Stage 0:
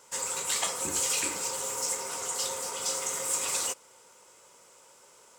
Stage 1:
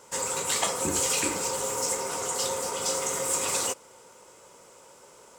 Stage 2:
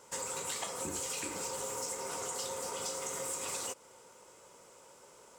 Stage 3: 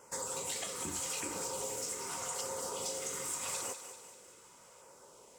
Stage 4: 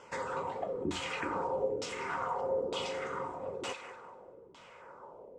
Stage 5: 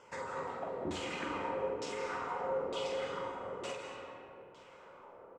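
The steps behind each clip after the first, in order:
tilt shelf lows +4 dB, about 940 Hz; trim +5.5 dB
compression, threshold -30 dBFS, peak gain reduction 8.5 dB; trim -5 dB
LFO notch saw down 0.83 Hz 260–4100 Hz; on a send: thinning echo 196 ms, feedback 53%, level -10 dB
LFO low-pass saw down 1.1 Hz 360–3700 Hz; trim +4.5 dB
doubling 47 ms -6.5 dB; algorithmic reverb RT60 2.5 s, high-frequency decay 0.5×, pre-delay 120 ms, DRR 3.5 dB; trim -5 dB

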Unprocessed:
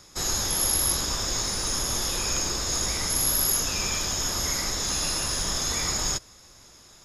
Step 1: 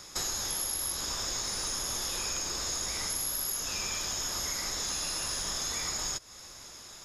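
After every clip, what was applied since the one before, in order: bass shelf 380 Hz -6.5 dB; compression 6:1, threshold -36 dBFS, peak gain reduction 14.5 dB; trim +4.5 dB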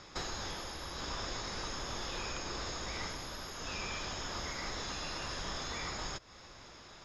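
distance through air 200 m; trim +1 dB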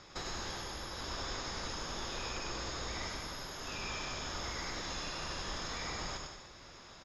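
bouncing-ball echo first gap 100 ms, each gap 0.8×, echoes 5; trim -2.5 dB

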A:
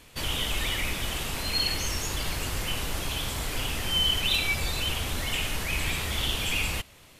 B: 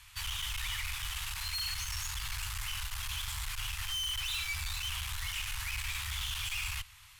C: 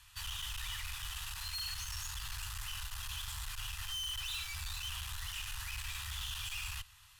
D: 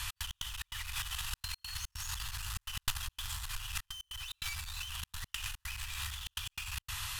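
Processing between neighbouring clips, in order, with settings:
valve stage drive 33 dB, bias 0.4; inverse Chebyshev band-stop 220–470 Hz, stop band 60 dB
band-stop 2.2 kHz, Q 6.3; trim -4 dB
trance gate "x.x.xx.xxxxx" 146 bpm -60 dB; compressor with a negative ratio -48 dBFS, ratio -0.5; trim +11.5 dB

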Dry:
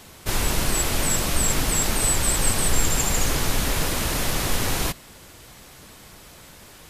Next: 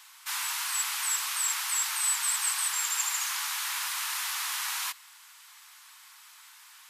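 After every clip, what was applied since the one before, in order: steep high-pass 920 Hz 48 dB/octave; trim -4.5 dB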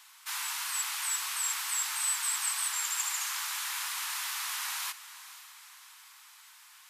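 wow and flutter 16 cents; echo that smears into a reverb 499 ms, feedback 50%, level -15 dB; trim -3 dB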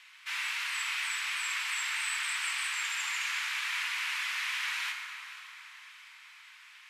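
band-pass filter 2.3 kHz, Q 2.3; plate-style reverb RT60 2.9 s, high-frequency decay 0.5×, DRR 2 dB; trim +7.5 dB

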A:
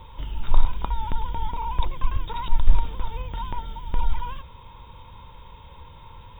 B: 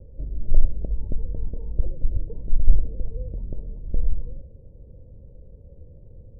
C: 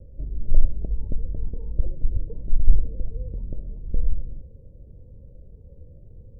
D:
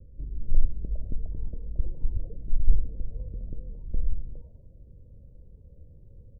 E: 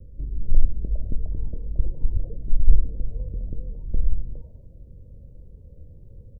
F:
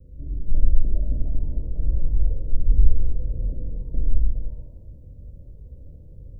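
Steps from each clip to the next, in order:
steep low-pass 630 Hz 72 dB/octave; trim +1 dB
Shepard-style phaser rising 1.7 Hz
bands offset in time lows, highs 410 ms, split 530 Hz; trim -4.5 dB
doubling 24 ms -14 dB; trim +5 dB
gated-style reverb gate 490 ms falling, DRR -5 dB; trim -4.5 dB

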